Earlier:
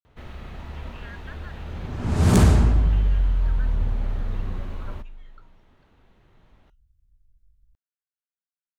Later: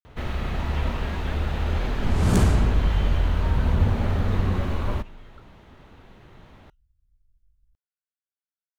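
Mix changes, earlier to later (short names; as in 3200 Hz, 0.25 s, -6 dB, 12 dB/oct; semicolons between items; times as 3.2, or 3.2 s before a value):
first sound +10.5 dB; second sound -4.0 dB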